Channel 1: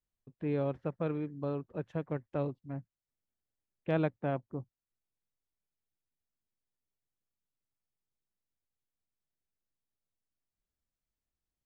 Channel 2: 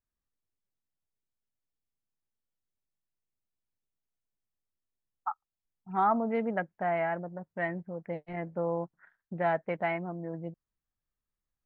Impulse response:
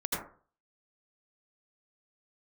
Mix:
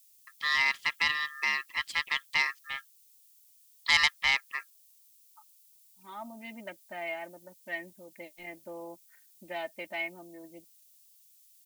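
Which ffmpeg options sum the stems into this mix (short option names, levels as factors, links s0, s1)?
-filter_complex "[0:a]highpass=180,crystalizer=i=2.5:c=0,aeval=exprs='val(0)*sin(2*PI*1500*n/s)':c=same,volume=1.33,asplit=2[s0][s1];[1:a]aecho=1:1:3.3:0.98,adelay=100,volume=0.237[s2];[s1]apad=whole_len=518752[s3];[s2][s3]sidechaincompress=threshold=0.002:ratio=8:attack=6.8:release=1290[s4];[s0][s4]amix=inputs=2:normalize=0,asoftclip=type=tanh:threshold=0.106,aexciter=amount=9.8:drive=4.1:freq=2200"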